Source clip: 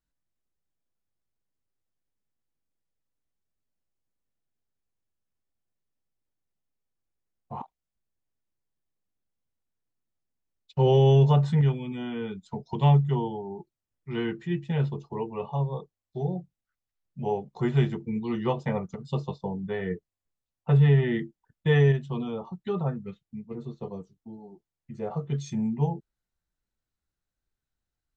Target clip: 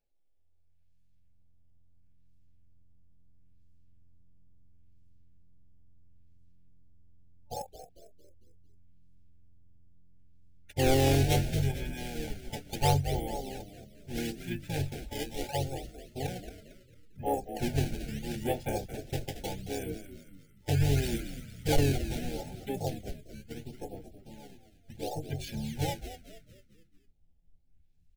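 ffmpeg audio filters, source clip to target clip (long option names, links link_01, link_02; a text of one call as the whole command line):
ffmpeg -i in.wav -filter_complex "[0:a]equalizer=frequency=89:width=0.47:gain=-13,aecho=1:1:1.2:0.31,acrusher=samples=12:mix=1:aa=0.000001:lfo=1:lforange=19.2:lforate=0.74,afftfilt=real='re*(1-between(b*sr/4096,880,2100))':imag='im*(1-between(b*sr/4096,880,2100))':win_size=4096:overlap=0.75,asubboost=boost=11:cutoff=56,asplit=2[link_01][link_02];[link_02]asplit=5[link_03][link_04][link_05][link_06][link_07];[link_03]adelay=225,afreqshift=-87,volume=-11dB[link_08];[link_04]adelay=450,afreqshift=-174,volume=-18.1dB[link_09];[link_05]adelay=675,afreqshift=-261,volume=-25.3dB[link_10];[link_06]adelay=900,afreqshift=-348,volume=-32.4dB[link_11];[link_07]adelay=1125,afreqshift=-435,volume=-39.5dB[link_12];[link_08][link_09][link_10][link_11][link_12]amix=inputs=5:normalize=0[link_13];[link_01][link_13]amix=inputs=2:normalize=0,asplit=3[link_14][link_15][link_16];[link_15]asetrate=29433,aresample=44100,atempo=1.49831,volume=-2dB[link_17];[link_16]asetrate=33038,aresample=44100,atempo=1.33484,volume=-16dB[link_18];[link_14][link_17][link_18]amix=inputs=3:normalize=0,asoftclip=type=tanh:threshold=-13.5dB" out.wav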